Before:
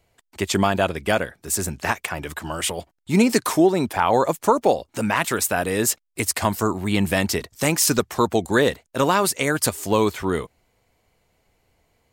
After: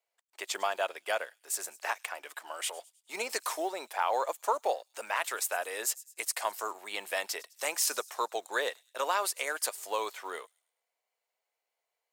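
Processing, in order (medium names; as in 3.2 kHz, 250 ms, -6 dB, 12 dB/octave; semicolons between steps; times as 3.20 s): companding laws mixed up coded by A; high-pass 530 Hz 24 dB/octave; on a send: feedback echo behind a high-pass 104 ms, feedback 43%, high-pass 5.6 kHz, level -16 dB; on the sum: trim -9 dB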